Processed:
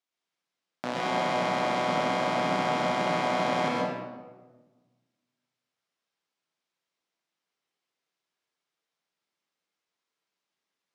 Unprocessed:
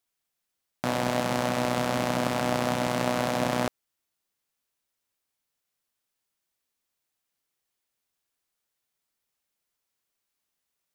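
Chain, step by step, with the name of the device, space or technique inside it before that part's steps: supermarket ceiling speaker (band-pass 200–5500 Hz; reverberation RT60 1.3 s, pre-delay 106 ms, DRR -4 dB); trim -4 dB

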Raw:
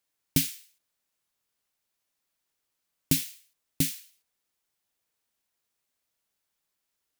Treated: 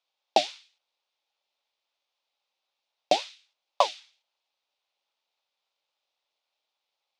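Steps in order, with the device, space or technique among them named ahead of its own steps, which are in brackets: peaking EQ 1.3 kHz -8 dB 1.6 oct; voice changer toy (ring modulator with a swept carrier 670 Hz, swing 35%, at 3.7 Hz; cabinet simulation 530–4900 Hz, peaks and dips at 560 Hz +6 dB, 830 Hz +7 dB, 1.7 kHz -5 dB, 2.5 kHz +4 dB, 3.6 kHz +5 dB); trim +7 dB

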